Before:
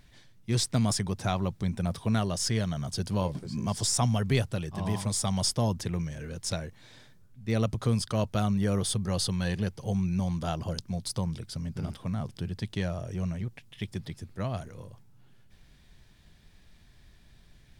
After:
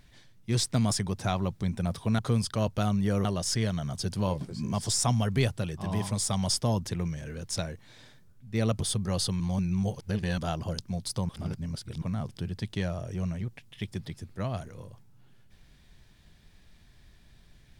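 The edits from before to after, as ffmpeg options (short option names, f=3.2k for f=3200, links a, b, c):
-filter_complex "[0:a]asplit=8[a][b][c][d][e][f][g][h];[a]atrim=end=2.192[i];[b]atrim=start=7.758:end=8.822[j];[c]atrim=start=2.188:end=7.762[k];[d]atrim=start=8.818:end=9.402[l];[e]atrim=start=9.398:end=10.382,asetpts=PTS-STARTPTS,areverse[m];[f]atrim=start=10.378:end=11.292[n];[g]atrim=start=11.288:end=12.022,asetpts=PTS-STARTPTS,areverse[o];[h]atrim=start=12.018[p];[i][j]acrossfade=d=0.004:c1=hsin:c2=hsin[q];[q][k]acrossfade=d=0.004:c1=hsin:c2=hsin[r];[r][l]acrossfade=d=0.004:c1=hsin:c2=hsin[s];[s][m]acrossfade=d=0.004:c1=hsin:c2=hsin[t];[t][n]acrossfade=d=0.004:c1=hsin:c2=hsin[u];[u][o]acrossfade=d=0.004:c1=hsin:c2=hsin[v];[v][p]acrossfade=d=0.004:c1=hsin:c2=hsin"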